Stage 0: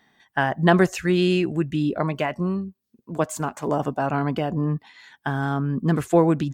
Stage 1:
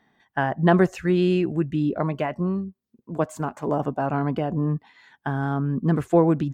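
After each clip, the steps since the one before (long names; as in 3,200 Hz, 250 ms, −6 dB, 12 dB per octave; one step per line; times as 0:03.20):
high-shelf EQ 2,200 Hz −10.5 dB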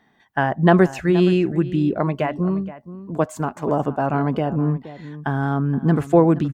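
slap from a distant wall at 81 metres, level −15 dB
level +3.5 dB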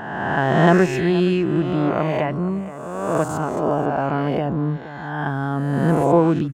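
peak hold with a rise ahead of every peak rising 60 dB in 1.57 s
level −2.5 dB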